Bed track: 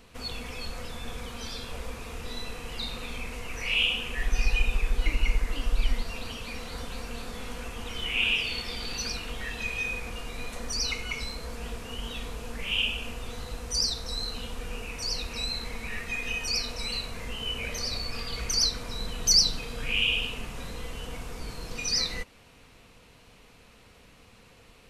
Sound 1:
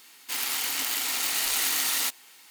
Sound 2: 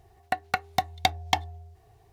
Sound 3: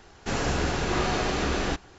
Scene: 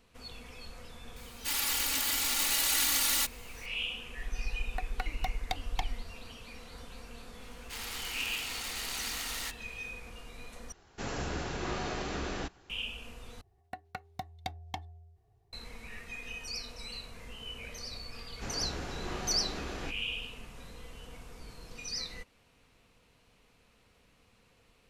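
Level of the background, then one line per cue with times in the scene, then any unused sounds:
bed track -10.5 dB
1.16 add 1 -4.5 dB + comb 3.5 ms, depth 88%
4.46 add 2 -12.5 dB
7.41 add 1 -8.5 dB + high shelf 9900 Hz -11.5 dB
10.72 replace with 3 -9.5 dB
13.41 replace with 2 -17.5 dB + low shelf 430 Hz +9 dB
18.15 add 3 -13 dB

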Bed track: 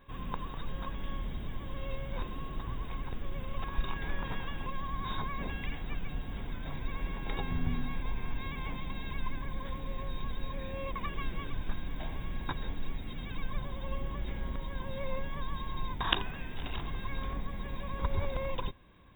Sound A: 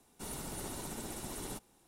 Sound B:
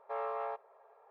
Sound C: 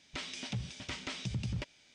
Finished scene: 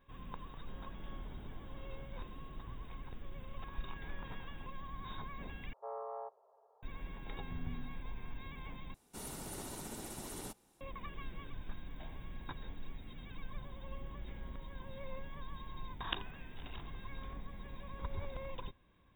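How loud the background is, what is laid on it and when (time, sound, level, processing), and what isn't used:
bed track -9.5 dB
0.47 add A -13.5 dB + brick-wall FIR low-pass 1800 Hz
5.73 replace with B -5.5 dB + LPF 1100 Hz 24 dB/oct
8.94 replace with A -3 dB
not used: C

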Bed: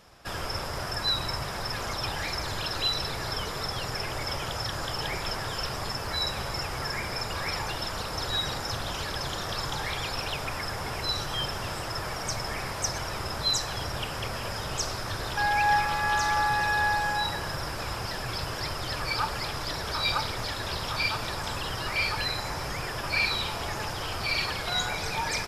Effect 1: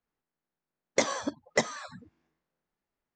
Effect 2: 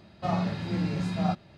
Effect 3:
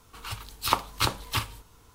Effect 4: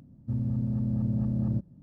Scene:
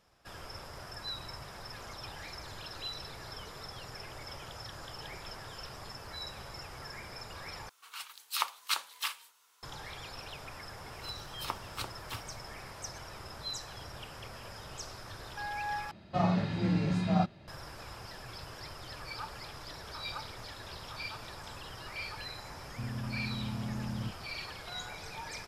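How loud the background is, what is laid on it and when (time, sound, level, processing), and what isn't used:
bed -13 dB
7.69 replace with 3 -4.5 dB + HPF 1200 Hz
10.77 add 3 -14 dB
15.91 replace with 2 -0.5 dB + high shelf 4800 Hz -3 dB
22.5 add 4 -9.5 dB
not used: 1

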